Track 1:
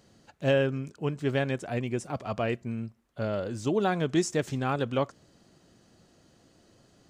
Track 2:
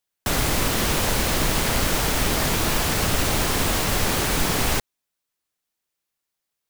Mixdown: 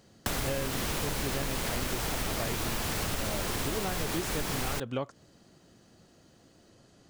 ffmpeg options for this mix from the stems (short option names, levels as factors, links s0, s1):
-filter_complex "[0:a]volume=1.12[s0];[1:a]volume=0.891[s1];[s0][s1]amix=inputs=2:normalize=0,acompressor=threshold=0.0355:ratio=6"